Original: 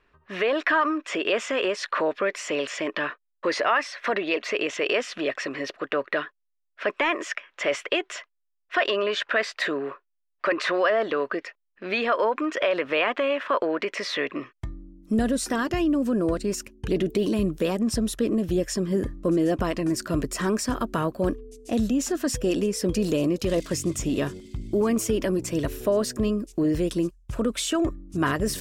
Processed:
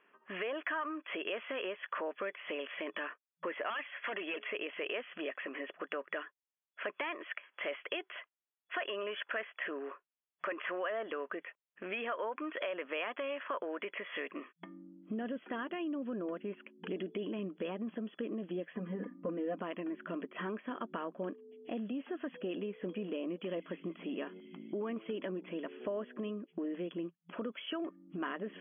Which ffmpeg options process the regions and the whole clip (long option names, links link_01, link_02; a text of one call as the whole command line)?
ffmpeg -i in.wav -filter_complex "[0:a]asettb=1/sr,asplit=3[link_01][link_02][link_03];[link_01]atrim=end=3.704[link_04];[link_02]atrim=start=3.7:end=4.5,asetpts=PTS-STARTPTS,afade=type=in:duration=0.004:curve=qsin,afade=type=out:start_time=0.796:duration=0.004:curve=qsin,asoftclip=type=hard:threshold=-24dB,highshelf=frequency=3300:gain=11,bandreject=frequency=426.4:width_type=h:width=4,bandreject=frequency=852.8:width_type=h:width=4[link_05];[link_03]atrim=start=4.496[link_06];[link_04][link_05]acrossfade=duration=0.004:curve1=hsin:curve2=qsin[link_07];[link_07][link_06]acrossfade=duration=0.004:curve1=qsin:curve2=hsin,asettb=1/sr,asplit=3[link_08][link_09][link_10];[link_08]atrim=end=18.734[link_11];[link_09]atrim=start=18.73:end=19.59,asetpts=PTS-STARTPTS,afade=type=in:duration=0.004:curve=qsin,afade=type=out:start_time=0.856:duration=0.004:curve=qsin,lowpass=frequency=2600:width=0.5412,lowpass=frequency=2600:width=1.3066,bandreject=frequency=50:width_type=h:width=6,bandreject=frequency=100:width_type=h:width=6,bandreject=frequency=150:width_type=h:width=6,bandreject=frequency=200:width_type=h:width=6,bandreject=frequency=250:width_type=h:width=6,bandreject=frequency=300:width_type=h:width=6,aecho=1:1:4.1:0.87,atrim=end_sample=37926[link_12];[link_10]atrim=start=19.586[link_13];[link_11][link_12]acrossfade=duration=0.004:curve1=hsin:curve2=qsin[link_14];[link_14][link_13]acrossfade=duration=0.004:curve1=qsin:curve2=hsin,afftfilt=real='re*between(b*sr/4096,170,3400)':imag='im*between(b*sr/4096,170,3400)':win_size=4096:overlap=0.75,lowshelf=frequency=250:gain=-6.5,acompressor=threshold=-44dB:ratio=2,volume=-1dB" out.wav